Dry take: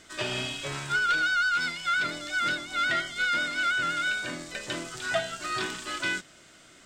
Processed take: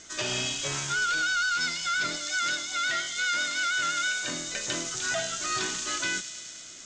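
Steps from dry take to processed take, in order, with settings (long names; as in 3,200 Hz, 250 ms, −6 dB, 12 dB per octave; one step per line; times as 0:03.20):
0:02.16–0:04.28: low-shelf EQ 450 Hz −8 dB
brickwall limiter −21.5 dBFS, peak gain reduction 6.5 dB
low-pass with resonance 6,500 Hz, resonance Q 4.9
delay with a high-pass on its return 105 ms, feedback 81%, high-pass 3,700 Hz, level −8 dB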